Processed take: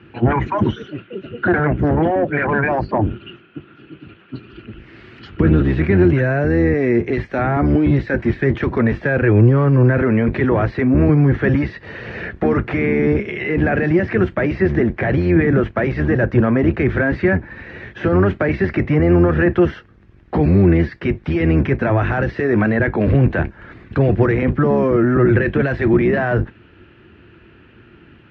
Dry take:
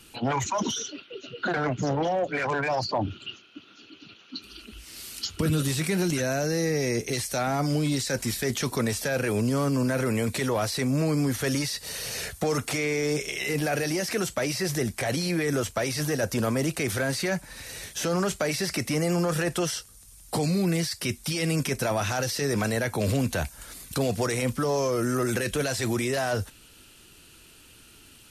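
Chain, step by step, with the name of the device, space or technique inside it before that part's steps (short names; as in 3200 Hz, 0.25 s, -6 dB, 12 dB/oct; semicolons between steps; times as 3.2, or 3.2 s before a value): sub-octave bass pedal (octaver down 1 oct, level +2 dB; speaker cabinet 61–2300 Hz, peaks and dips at 110 Hz +4 dB, 210 Hz +4 dB, 350 Hz +9 dB, 1700 Hz +6 dB); gain +6.5 dB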